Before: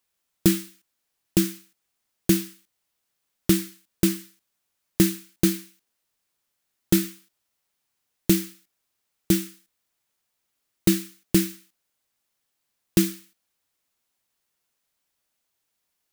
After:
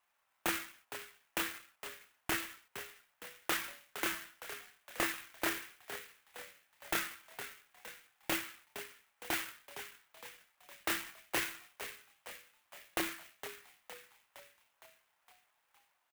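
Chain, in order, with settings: chorus voices 4, 0.24 Hz, delay 28 ms, depth 2.9 ms; in parallel at +3 dB: compression, threshold -29 dBFS, peak gain reduction 14 dB; on the sum: high-pass 680 Hz 24 dB/octave; wavefolder -18.5 dBFS; Bessel low-pass 2.2 kHz, order 8; frequency-shifting echo 462 ms, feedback 58%, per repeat +80 Hz, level -11 dB; sampling jitter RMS 0.051 ms; trim +5.5 dB

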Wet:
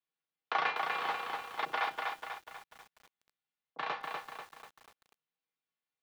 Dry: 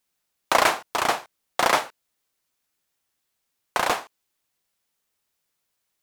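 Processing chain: low-pass 3.7 kHz 24 dB/octave; hum notches 50/100 Hz; frequency shift +110 Hz; band-stop 560 Hz, Q 17; feedback comb 160 Hz, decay 0.3 s, harmonics odd, mix 80%; 1.65–3.79 s: bands offset in time lows, highs 80 ms, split 440 Hz; bit-crushed delay 245 ms, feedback 55%, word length 9-bit, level -3 dB; trim -2 dB

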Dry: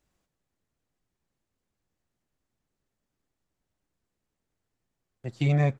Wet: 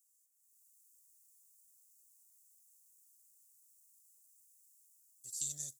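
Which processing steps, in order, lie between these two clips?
level rider gain up to 14 dB; inverse Chebyshev high-pass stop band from 2.5 kHz, stop band 60 dB; trim +13.5 dB

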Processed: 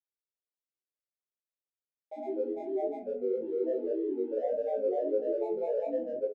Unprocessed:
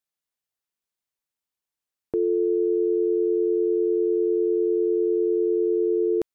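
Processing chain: local Wiener filter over 41 samples; high-pass 260 Hz; distance through air 220 m; granulator, grains 20 per s, pitch spread up and down by 12 st; peak limiter -22.5 dBFS, peak gain reduction 4.5 dB; peaking EQ 500 Hz +9.5 dB 1 oct; static phaser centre 460 Hz, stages 4; simulated room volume 260 m³, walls furnished, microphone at 0.92 m; flange 1.7 Hz, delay 6 ms, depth 6.9 ms, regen -41%; doubling 21 ms -2.5 dB; trim -6.5 dB

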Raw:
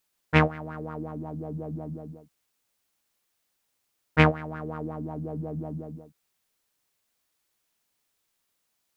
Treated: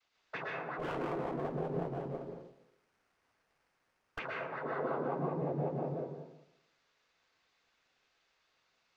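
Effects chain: high-pass 330 Hz 6 dB/octave; bass shelf 480 Hz -9.5 dB; compression 12:1, threshold -39 dBFS, peak gain reduction 23 dB; saturation -34.5 dBFS, distortion -13 dB; noise-vocoded speech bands 16; crackle 210 per s -70 dBFS; distance through air 210 m; plate-style reverb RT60 0.82 s, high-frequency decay 0.6×, pre-delay 105 ms, DRR -2 dB; 0.79–4.19 s: sliding maximum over 9 samples; trim +7 dB

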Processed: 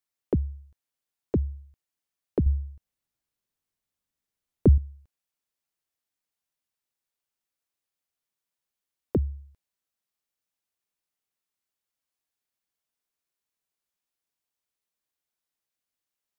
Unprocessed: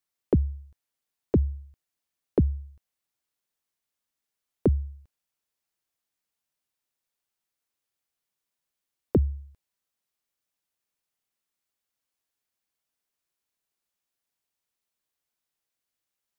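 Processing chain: 2.46–4.78 s: bass shelf 270 Hz +10.5 dB; trim -3 dB

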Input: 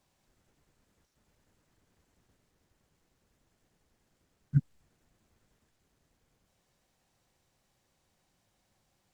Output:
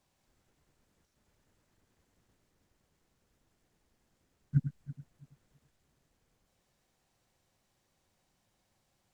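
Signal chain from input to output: backward echo that repeats 165 ms, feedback 48%, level -10 dB; trim -2 dB

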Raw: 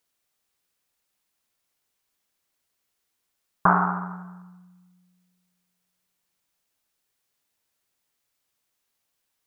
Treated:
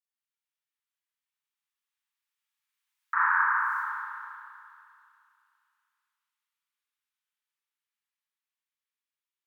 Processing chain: Doppler pass-by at 3.75 s, 49 m/s, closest 4.4 m; Chebyshev high-pass 850 Hz, order 10; in parallel at -2 dB: compression, threshold -47 dBFS, peak gain reduction 13.5 dB; on the sum: tilt shelf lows -5 dB, about 1.4 kHz; spring tank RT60 2.5 s, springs 32/38 ms, chirp 70 ms, DRR -9.5 dB; trim +5 dB

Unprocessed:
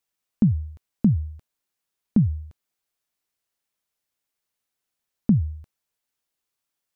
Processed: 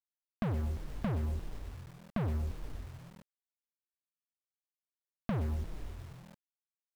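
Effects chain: fuzz box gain 41 dB, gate -49 dBFS; frequency-shifting echo 118 ms, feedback 60%, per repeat -41 Hz, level -13 dB; compression 8:1, threshold -25 dBFS, peak gain reduction 12 dB; distance through air 350 m; word length cut 8-bit, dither none; trim -7 dB

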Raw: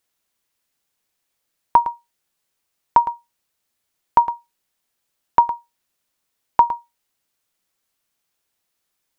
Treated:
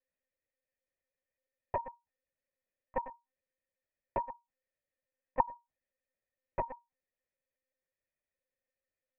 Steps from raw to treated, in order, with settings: cascade formant filter e; monotone LPC vocoder at 8 kHz 260 Hz; trim +1 dB

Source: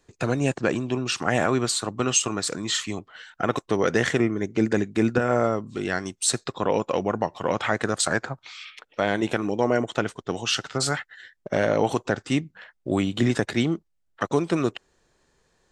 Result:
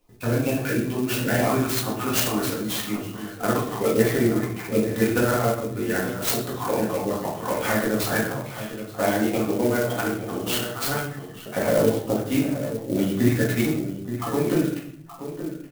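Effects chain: random holes in the spectrogram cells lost 33%; 4.83–5.35 s: treble shelf 2.4 kHz +10.5 dB; echo from a far wall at 150 m, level -10 dB; simulated room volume 120 m³, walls mixed, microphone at 1.9 m; sampling jitter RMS 0.047 ms; trim -6 dB

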